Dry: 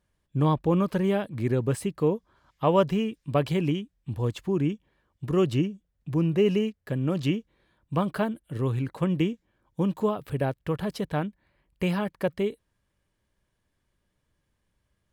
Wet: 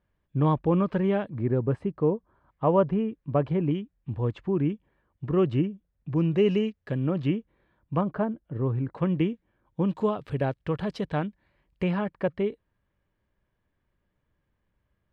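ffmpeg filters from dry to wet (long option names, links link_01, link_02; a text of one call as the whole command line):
ffmpeg -i in.wav -af "asetnsamples=nb_out_samples=441:pad=0,asendcmd='1.3 lowpass f 1300;3.71 lowpass f 2100;6.16 lowpass f 4200;7.07 lowpass f 2100;8.01 lowpass f 1200;8.95 lowpass f 2500;9.87 lowpass f 4500;11.83 lowpass f 2400',lowpass=2500" out.wav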